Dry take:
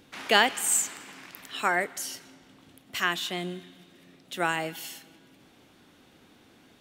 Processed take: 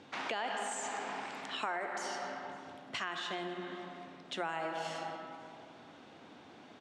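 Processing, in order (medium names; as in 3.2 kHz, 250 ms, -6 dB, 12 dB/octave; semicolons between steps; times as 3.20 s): reverberation RT60 2.2 s, pre-delay 25 ms, DRR 7 dB; peak limiter -17.5 dBFS, peak gain reduction 11 dB; Bessel low-pass 5.4 kHz, order 6; compression 6:1, threshold -38 dBFS, peak gain reduction 13 dB; high-pass 100 Hz; peaking EQ 830 Hz +7 dB 1.3 oct; hum notches 60/120/180 Hz; delay 543 ms -24 dB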